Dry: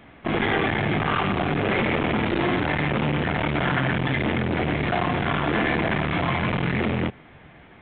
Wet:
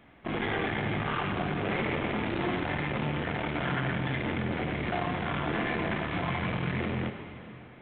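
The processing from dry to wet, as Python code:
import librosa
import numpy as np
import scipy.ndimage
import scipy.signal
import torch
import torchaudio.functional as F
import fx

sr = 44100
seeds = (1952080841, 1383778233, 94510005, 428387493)

y = fx.rev_plate(x, sr, seeds[0], rt60_s=3.3, hf_ratio=0.95, predelay_ms=0, drr_db=6.5)
y = y * 10.0 ** (-8.5 / 20.0)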